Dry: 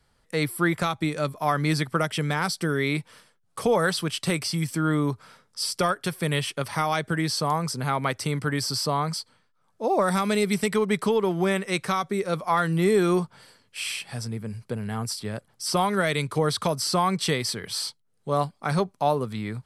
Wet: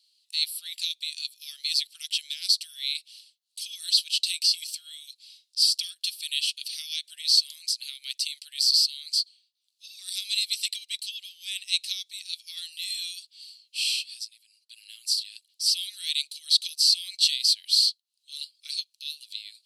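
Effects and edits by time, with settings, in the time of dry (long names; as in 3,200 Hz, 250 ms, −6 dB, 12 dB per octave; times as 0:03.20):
0:13.93–0:14.70: fade out, to −15 dB
whole clip: Chebyshev high-pass filter 2,700 Hz, order 5; parametric band 4,200 Hz +11.5 dB 0.46 octaves; level +2 dB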